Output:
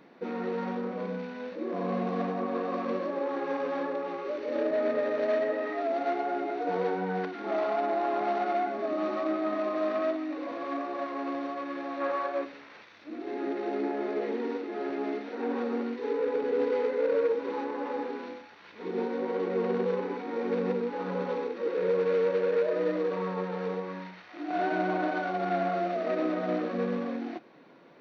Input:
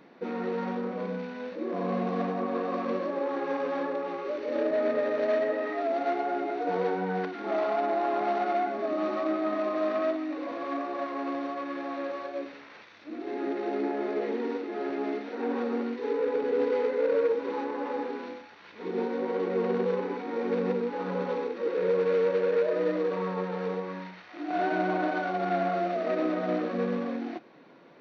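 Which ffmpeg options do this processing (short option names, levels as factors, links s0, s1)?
-filter_complex "[0:a]asplit=3[s0][s1][s2];[s0]afade=t=out:st=12:d=0.02[s3];[s1]equalizer=f=1100:w=0.75:g=10,afade=t=in:st=12:d=0.02,afade=t=out:st=12.44:d=0.02[s4];[s2]afade=t=in:st=12.44:d=0.02[s5];[s3][s4][s5]amix=inputs=3:normalize=0,volume=0.891"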